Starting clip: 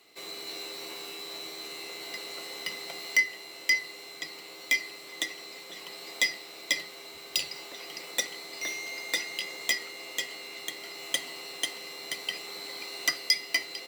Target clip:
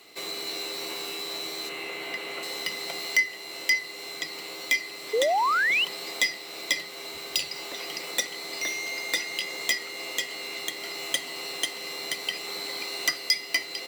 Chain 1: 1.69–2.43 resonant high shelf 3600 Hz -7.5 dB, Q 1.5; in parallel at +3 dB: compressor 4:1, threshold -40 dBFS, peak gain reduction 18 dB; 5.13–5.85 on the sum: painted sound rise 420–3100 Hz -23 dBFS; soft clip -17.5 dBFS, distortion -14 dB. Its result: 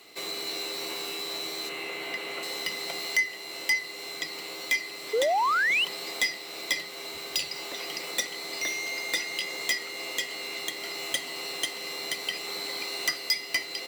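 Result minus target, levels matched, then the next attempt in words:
soft clip: distortion +11 dB
1.69–2.43 resonant high shelf 3600 Hz -7.5 dB, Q 1.5; in parallel at +3 dB: compressor 4:1, threshold -40 dBFS, peak gain reduction 18 dB; 5.13–5.85 on the sum: painted sound rise 420–3100 Hz -23 dBFS; soft clip -9.5 dBFS, distortion -25 dB

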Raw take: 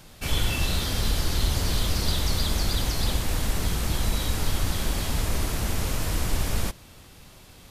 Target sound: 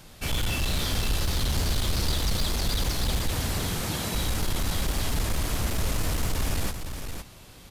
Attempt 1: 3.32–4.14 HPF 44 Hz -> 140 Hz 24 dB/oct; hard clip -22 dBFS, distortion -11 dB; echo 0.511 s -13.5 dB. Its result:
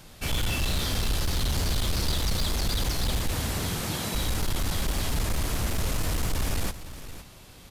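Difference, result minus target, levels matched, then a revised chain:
echo-to-direct -6 dB
3.32–4.14 HPF 44 Hz -> 140 Hz 24 dB/oct; hard clip -22 dBFS, distortion -11 dB; echo 0.511 s -7.5 dB

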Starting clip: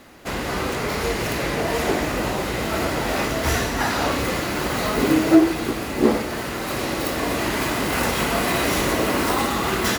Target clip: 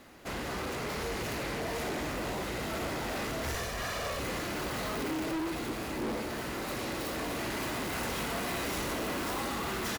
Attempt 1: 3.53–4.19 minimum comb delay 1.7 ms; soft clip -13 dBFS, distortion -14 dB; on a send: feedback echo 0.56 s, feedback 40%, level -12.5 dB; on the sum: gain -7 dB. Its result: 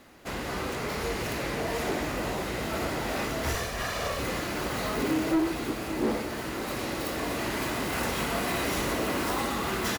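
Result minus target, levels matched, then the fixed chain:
soft clip: distortion -8 dB
3.53–4.19 minimum comb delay 1.7 ms; soft clip -24.5 dBFS, distortion -6 dB; on a send: feedback echo 0.56 s, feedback 40%, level -12.5 dB; on the sum: gain -7 dB

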